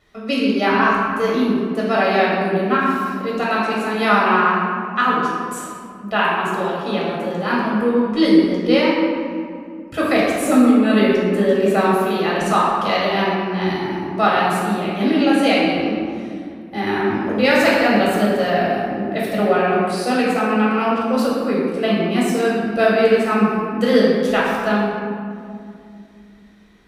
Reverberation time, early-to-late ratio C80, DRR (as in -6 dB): 2.3 s, 0.5 dB, -6.0 dB